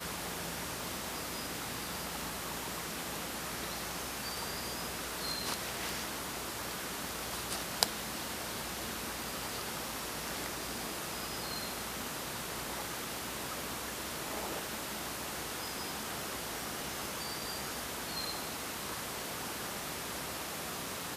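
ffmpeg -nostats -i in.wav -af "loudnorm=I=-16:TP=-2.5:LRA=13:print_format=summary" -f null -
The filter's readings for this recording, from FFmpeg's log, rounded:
Input Integrated:    -37.6 LUFS
Input True Peak:      -4.1 dBTP
Input LRA:             1.8 LU
Input Threshold:     -47.6 LUFS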